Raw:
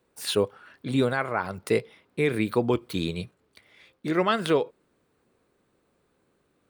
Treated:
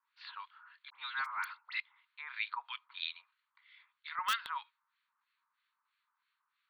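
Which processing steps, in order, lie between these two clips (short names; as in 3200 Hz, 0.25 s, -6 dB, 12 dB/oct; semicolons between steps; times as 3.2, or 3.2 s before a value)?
Chebyshev band-pass 930–4400 Hz, order 5; in parallel at -8 dB: wrapped overs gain 17.5 dB; 0.9–1.8 on the sum: dispersion highs, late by 64 ms, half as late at 1900 Hz; harmonic tremolo 3.1 Hz, depth 100%, crossover 1400 Hz; gain -3 dB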